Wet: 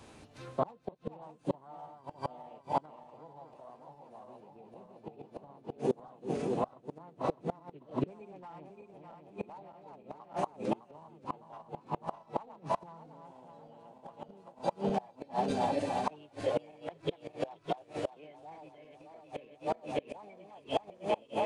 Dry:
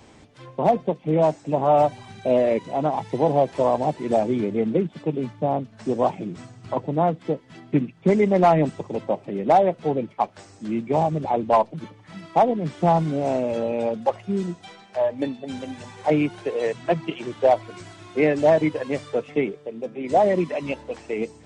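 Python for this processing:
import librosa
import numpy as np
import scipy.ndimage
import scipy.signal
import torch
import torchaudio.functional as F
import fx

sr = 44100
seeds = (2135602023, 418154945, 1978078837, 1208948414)

y = fx.reverse_delay_fb(x, sr, ms=304, feedback_pct=73, wet_db=-3.5)
y = fx.gate_flip(y, sr, shuts_db=-14.0, range_db=-29)
y = fx.formant_shift(y, sr, semitones=3)
y = F.gain(torch.from_numpy(y), -4.5).numpy()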